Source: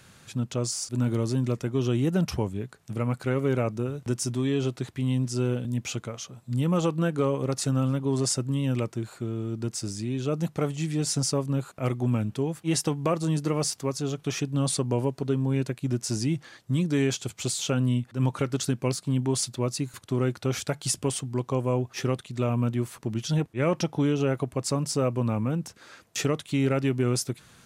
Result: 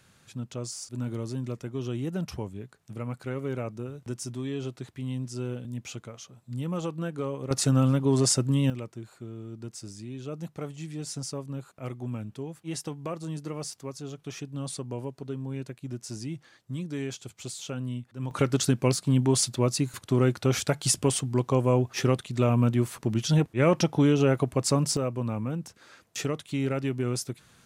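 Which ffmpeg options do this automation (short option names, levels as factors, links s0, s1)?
-af "asetnsamples=n=441:p=0,asendcmd='7.51 volume volume 3dB;8.7 volume volume -9dB;18.31 volume volume 3dB;24.97 volume volume -4dB',volume=0.447"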